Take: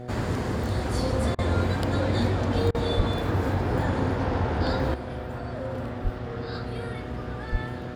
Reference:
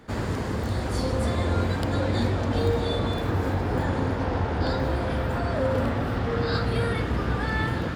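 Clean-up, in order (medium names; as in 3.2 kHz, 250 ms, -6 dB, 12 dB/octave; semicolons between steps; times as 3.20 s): de-hum 123 Hz, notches 6; 2.96–3.08 s: high-pass 140 Hz 24 dB/octave; 6.03–6.15 s: high-pass 140 Hz 24 dB/octave; 7.51–7.63 s: high-pass 140 Hz 24 dB/octave; interpolate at 1.35/2.71 s, 35 ms; trim 0 dB, from 4.94 s +9 dB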